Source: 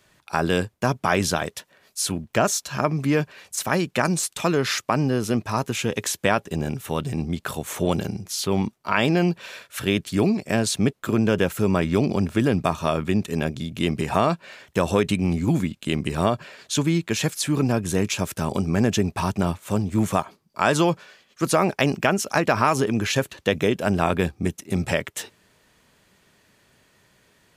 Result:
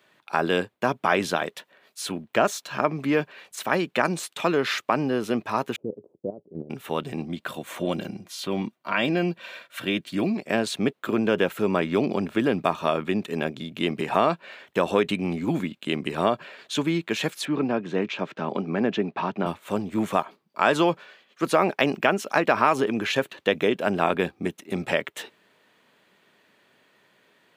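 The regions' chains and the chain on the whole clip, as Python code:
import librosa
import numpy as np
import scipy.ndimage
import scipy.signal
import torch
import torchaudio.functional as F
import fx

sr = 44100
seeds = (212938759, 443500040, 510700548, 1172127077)

y = fx.chain(x, sr, fx.cheby2_lowpass(hz=1700.0, order=4, stop_db=60),
    fx.peak_eq(hz=240.0, db=-2.5, octaves=0.69),
    fx.level_steps(step_db=13), at=(5.76, 6.7))
y = fx.chain(y, sr, fx.dynamic_eq(hz=890.0, q=1.1, threshold_db=-36.0, ratio=4.0, max_db=-4),
    fx.notch_comb(f0_hz=430.0), at=(7.23, 10.36))
y = fx.chain(y, sr, fx.highpass(hz=130.0, slope=24),
    fx.air_absorb(metres=190.0), at=(17.45, 19.46))
y = scipy.signal.sosfilt(scipy.signal.butter(2, 240.0, 'highpass', fs=sr, output='sos'), y)
y = fx.band_shelf(y, sr, hz=8000.0, db=-10.0, octaves=1.7)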